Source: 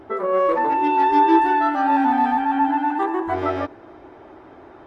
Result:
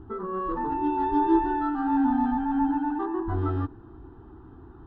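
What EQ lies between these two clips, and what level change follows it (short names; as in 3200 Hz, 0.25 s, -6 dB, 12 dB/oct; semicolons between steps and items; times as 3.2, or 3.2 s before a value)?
tilt -4.5 dB/oct; fixed phaser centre 2200 Hz, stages 6; -7.0 dB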